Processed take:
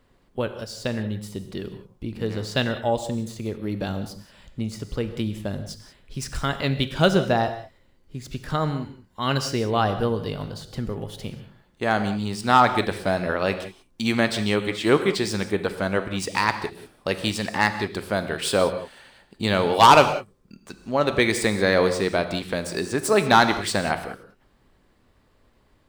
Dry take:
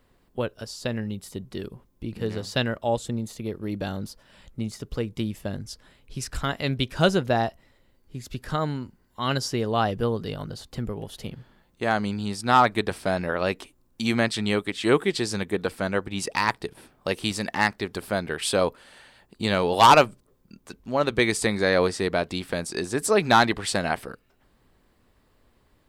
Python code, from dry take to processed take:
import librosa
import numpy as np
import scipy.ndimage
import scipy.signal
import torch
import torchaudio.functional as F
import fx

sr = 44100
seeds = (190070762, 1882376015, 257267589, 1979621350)

y = scipy.ndimage.median_filter(x, 3, mode='constant')
y = fx.rev_gated(y, sr, seeds[0], gate_ms=210, shape='flat', drr_db=9.0)
y = y * 10.0 ** (1.5 / 20.0)